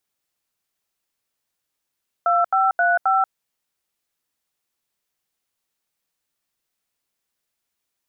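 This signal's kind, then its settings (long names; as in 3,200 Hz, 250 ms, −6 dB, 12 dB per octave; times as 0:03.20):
touch tones "2535", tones 185 ms, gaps 80 ms, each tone −17.5 dBFS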